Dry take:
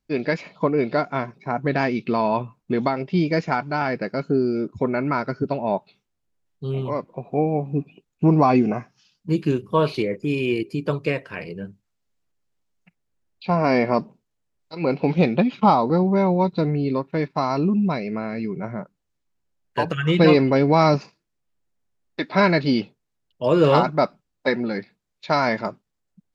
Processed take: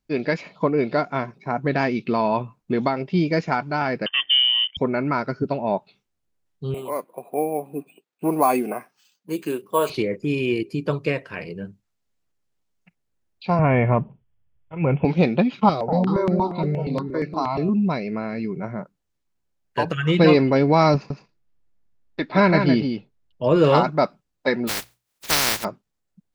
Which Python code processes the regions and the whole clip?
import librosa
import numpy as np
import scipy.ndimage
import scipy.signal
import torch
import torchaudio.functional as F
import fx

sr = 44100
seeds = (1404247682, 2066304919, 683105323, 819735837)

y = fx.chain(x, sr, fx.leveller(passes=1),
    fx.freq_invert(carrier_hz=3300), at=(4.06, 4.77))
y = fx.chain(y, sr, fx.highpass(hz=370.0, slope=12),
    fx.resample_bad(factor=4, down='filtered', up='hold'), at=(6.74, 9.9))
y = fx.chain(y, sr, fx.brickwall_lowpass(high_hz=3500.0),
    fx.low_shelf_res(hz=170.0, db=12.0, q=1.5), at=(13.59, 15.05))
y = fx.chain(y, sr, fx.echo_alternate(ms=190, hz=850.0, feedback_pct=54, wet_db=-5),
    fx.phaser_held(hz=8.5, low_hz=240.0, high_hz=3400.0), at=(15.69, 17.69))
y = fx.chain(y, sr, fx.lowpass(hz=3600.0, slope=6),
    fx.low_shelf(hz=110.0, db=8.5),
    fx.echo_single(ms=161, db=-6.5), at=(20.94, 23.56))
y = fx.spec_flatten(y, sr, power=0.13, at=(24.67, 25.63), fade=0.02)
y = fx.hum_notches(y, sr, base_hz=60, count=3, at=(24.67, 25.63), fade=0.02)